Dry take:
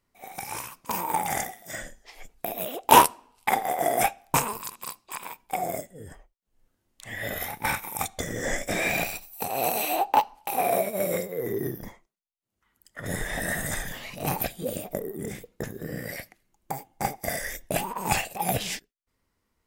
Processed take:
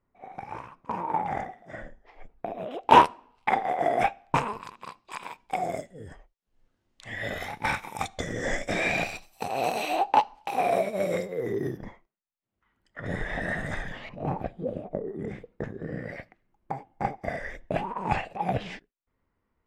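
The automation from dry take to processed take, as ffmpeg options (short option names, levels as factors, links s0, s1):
-af "asetnsamples=n=441:p=0,asendcmd='2.71 lowpass f 2700;5.05 lowpass f 5000;11.77 lowpass f 2600;14.09 lowpass f 1000;15.07 lowpass f 1900',lowpass=1400"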